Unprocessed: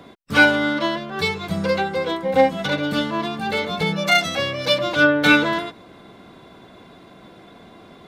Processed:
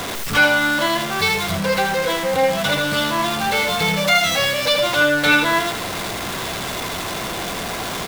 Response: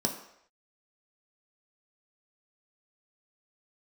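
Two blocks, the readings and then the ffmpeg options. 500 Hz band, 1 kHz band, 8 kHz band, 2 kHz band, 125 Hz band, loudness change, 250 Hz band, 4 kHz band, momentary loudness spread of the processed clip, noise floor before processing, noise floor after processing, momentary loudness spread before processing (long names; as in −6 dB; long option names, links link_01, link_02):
+1.0 dB, +3.5 dB, +11.5 dB, +2.0 dB, +1.5 dB, +1.0 dB, −2.0 dB, +4.5 dB, 10 LU, −47 dBFS, −27 dBFS, 9 LU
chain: -filter_complex "[0:a]aeval=exprs='val(0)+0.5*0.0944*sgn(val(0))':channel_layout=same,equalizer=frequency=260:width_type=o:width=1.8:gain=-8,asplit=2[link_01][link_02];[link_02]alimiter=limit=-11.5dB:level=0:latency=1:release=151,volume=-2dB[link_03];[link_01][link_03]amix=inputs=2:normalize=0,aecho=1:1:81:0.501,volume=-4dB"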